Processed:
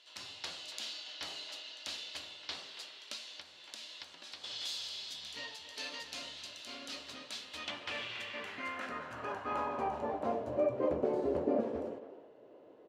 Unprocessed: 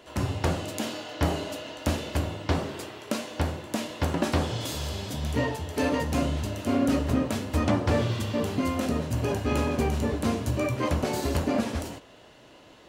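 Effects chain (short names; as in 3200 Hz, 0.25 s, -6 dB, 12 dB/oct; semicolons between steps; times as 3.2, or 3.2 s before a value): speakerphone echo 0.28 s, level -10 dB; 3.13–4.44 compressor 6:1, threshold -31 dBFS, peak gain reduction 11 dB; band-pass sweep 4100 Hz -> 450 Hz, 7.34–10.99; gain +1 dB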